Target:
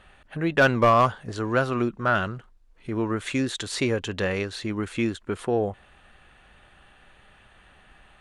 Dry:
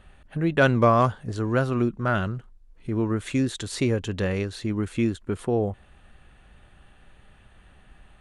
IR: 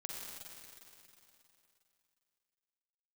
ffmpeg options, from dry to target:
-filter_complex "[0:a]asplit=2[link_01][link_02];[link_02]highpass=frequency=720:poles=1,volume=9dB,asoftclip=type=tanh:threshold=-6dB[link_03];[link_01][link_03]amix=inputs=2:normalize=0,lowpass=frequency=5500:poles=1,volume=-6dB,volume=11dB,asoftclip=hard,volume=-11dB"

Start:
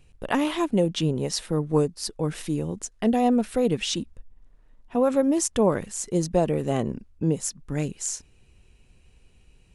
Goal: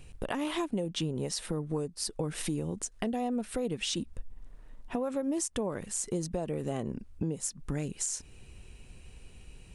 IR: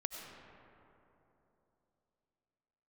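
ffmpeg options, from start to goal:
-filter_complex "[0:a]equalizer=frequency=8800:width_type=o:width=0.25:gain=5,acompressor=threshold=-34dB:ratio=10,asplit=2[link_01][link_02];[link_02]alimiter=level_in=6dB:limit=-24dB:level=0:latency=1:release=130,volume=-6dB,volume=0dB[link_03];[link_01][link_03]amix=inputs=2:normalize=0"

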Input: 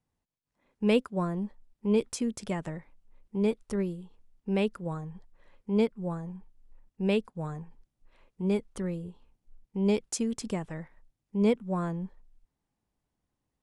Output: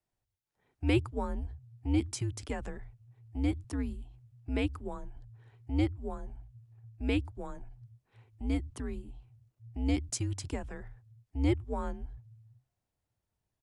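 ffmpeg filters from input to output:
ffmpeg -i in.wav -filter_complex "[0:a]acrossover=split=160[link_01][link_02];[link_01]adelay=110[link_03];[link_03][link_02]amix=inputs=2:normalize=0,afreqshift=-130,volume=-2dB" out.wav

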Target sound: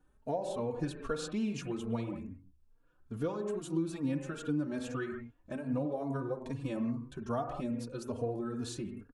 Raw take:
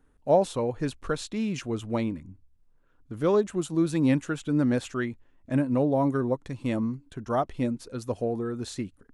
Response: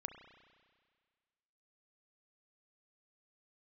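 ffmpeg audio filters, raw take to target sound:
-filter_complex "[0:a]bandreject=frequency=2000:width=8.2[link_01];[1:a]atrim=start_sample=2205,afade=type=out:start_time=0.19:duration=0.01,atrim=end_sample=8820,asetrate=32634,aresample=44100[link_02];[link_01][link_02]afir=irnorm=-1:irlink=0,acompressor=threshold=-30dB:ratio=6,asplit=2[link_03][link_04];[link_04]adelay=3.6,afreqshift=2.4[link_05];[link_03][link_05]amix=inputs=2:normalize=1,volume=1.5dB"

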